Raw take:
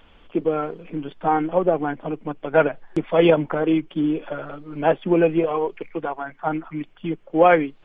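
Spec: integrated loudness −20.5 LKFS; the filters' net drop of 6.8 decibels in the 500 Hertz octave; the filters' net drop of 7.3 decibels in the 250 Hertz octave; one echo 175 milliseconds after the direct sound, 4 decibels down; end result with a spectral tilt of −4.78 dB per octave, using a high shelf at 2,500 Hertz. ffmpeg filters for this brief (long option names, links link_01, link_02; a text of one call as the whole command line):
ffmpeg -i in.wav -af "equalizer=frequency=250:width_type=o:gain=-8,equalizer=frequency=500:width_type=o:gain=-6,highshelf=frequency=2500:gain=-4,aecho=1:1:175:0.631,volume=6dB" out.wav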